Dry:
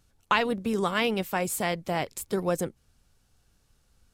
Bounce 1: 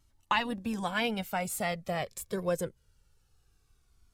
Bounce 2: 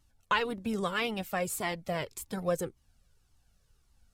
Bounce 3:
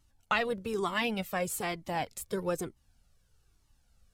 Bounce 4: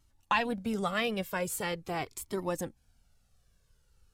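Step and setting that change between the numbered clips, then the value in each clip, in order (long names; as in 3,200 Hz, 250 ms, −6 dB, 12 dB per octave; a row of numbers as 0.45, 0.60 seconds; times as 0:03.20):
flanger whose copies keep moving one way, speed: 0.23, 1.8, 1.1, 0.43 Hertz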